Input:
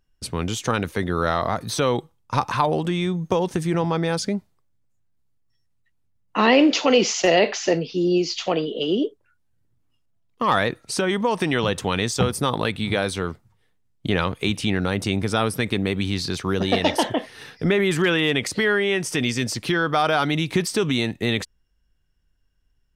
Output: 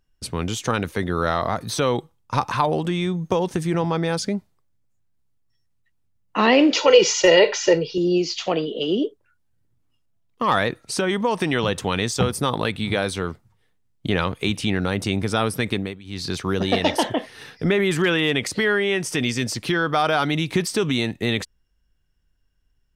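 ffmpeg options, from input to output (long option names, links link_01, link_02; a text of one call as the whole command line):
ffmpeg -i in.wav -filter_complex "[0:a]asettb=1/sr,asplit=3[link_01][link_02][link_03];[link_01]atrim=end=6.764[link_04];[link_02]atrim=start=6.76:end=7.98,asetpts=PTS-STARTPTS,afade=type=in:duration=0.004:curve=qsin,afade=type=out:start_time=1.216:duration=0.004:curve=qsin,aecho=1:1:2.1:0.91,atrim=end_sample=53802[link_05];[link_03]atrim=start=7.976[link_06];[link_04][link_05]acrossfade=duration=0.004:curve1=hsin:curve2=qsin[link_07];[link_07][link_06]acrossfade=duration=0.004:curve1=qsin:curve2=hsin,asplit=3[link_08][link_09][link_10];[link_08]atrim=end=15.99,asetpts=PTS-STARTPTS,afade=type=out:start_time=15.73:duration=0.26:silence=0.105925[link_11];[link_09]atrim=start=15.99:end=16.04,asetpts=PTS-STARTPTS,volume=-19.5dB[link_12];[link_10]atrim=start=16.04,asetpts=PTS-STARTPTS,afade=type=in:duration=0.26:silence=0.105925[link_13];[link_11][link_12][link_13]concat=n=3:v=0:a=1" out.wav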